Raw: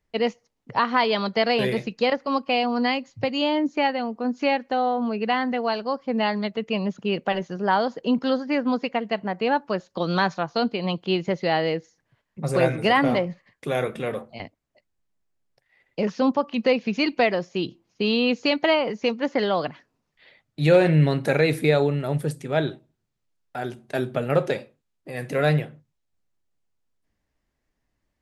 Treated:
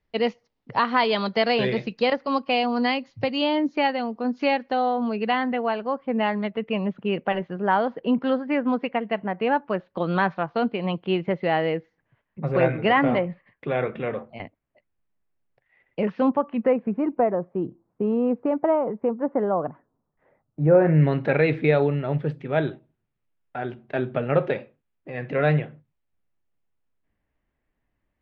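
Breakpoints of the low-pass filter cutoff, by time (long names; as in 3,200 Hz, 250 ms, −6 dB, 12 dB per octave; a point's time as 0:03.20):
low-pass filter 24 dB per octave
0:05.11 4,900 Hz
0:05.70 2,800 Hz
0:16.18 2,800 Hz
0:17.02 1,200 Hz
0:20.68 1,200 Hz
0:21.17 3,000 Hz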